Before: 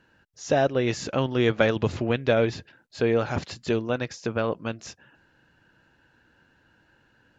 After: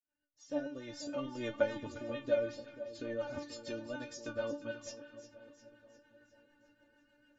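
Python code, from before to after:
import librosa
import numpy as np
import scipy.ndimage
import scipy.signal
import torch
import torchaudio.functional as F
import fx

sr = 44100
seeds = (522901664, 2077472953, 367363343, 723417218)

p1 = fx.fade_in_head(x, sr, length_s=1.49)
p2 = fx.dynamic_eq(p1, sr, hz=2500.0, q=0.76, threshold_db=-44.0, ratio=4.0, max_db=-7)
p3 = fx.rider(p2, sr, range_db=10, speed_s=2.0)
p4 = p2 + (p3 * librosa.db_to_amplitude(1.5))
p5 = fx.stiff_resonator(p4, sr, f0_hz=290.0, decay_s=0.28, stiffness=0.002)
p6 = fx.rotary(p5, sr, hz=6.7)
y = p6 + fx.echo_split(p6, sr, split_hz=880.0, low_ms=486, high_ms=354, feedback_pct=52, wet_db=-13.0, dry=0)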